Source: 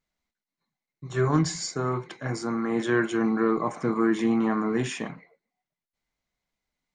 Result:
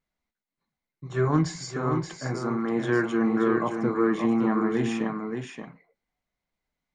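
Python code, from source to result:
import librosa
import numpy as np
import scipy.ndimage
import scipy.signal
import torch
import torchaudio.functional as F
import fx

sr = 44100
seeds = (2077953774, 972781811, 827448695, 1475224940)

y = fx.high_shelf(x, sr, hz=3800.0, db=-8.5)
y = y + 10.0 ** (-6.0 / 20.0) * np.pad(y, (int(577 * sr / 1000.0), 0))[:len(y)]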